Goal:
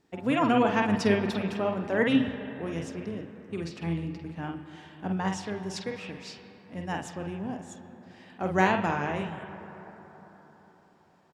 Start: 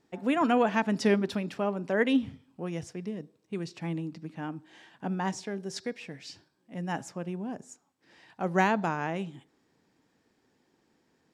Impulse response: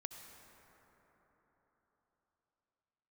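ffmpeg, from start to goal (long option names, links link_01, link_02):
-filter_complex "[0:a]asplit=2[link_01][link_02];[link_02]asetrate=22050,aresample=44100,atempo=2,volume=-13dB[link_03];[link_01][link_03]amix=inputs=2:normalize=0,asplit=2[link_04][link_05];[link_05]lowpass=frequency=3200:width_type=q:width=2[link_06];[1:a]atrim=start_sample=2205,adelay=48[link_07];[link_06][link_07]afir=irnorm=-1:irlink=0,volume=-1.5dB[link_08];[link_04][link_08]amix=inputs=2:normalize=0"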